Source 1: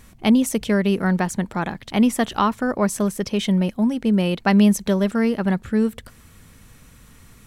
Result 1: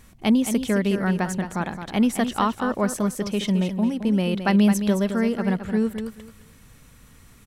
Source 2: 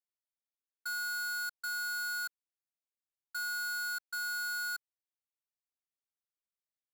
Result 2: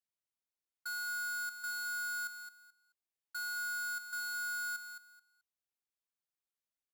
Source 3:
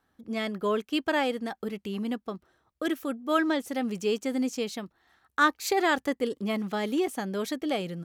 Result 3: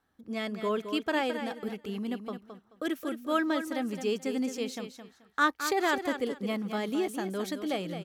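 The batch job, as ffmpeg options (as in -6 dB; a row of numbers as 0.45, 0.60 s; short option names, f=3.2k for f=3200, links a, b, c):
-af "aecho=1:1:216|432|648:0.355|0.0745|0.0156,volume=-3dB"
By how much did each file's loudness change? -2.5, -2.5, -2.5 LU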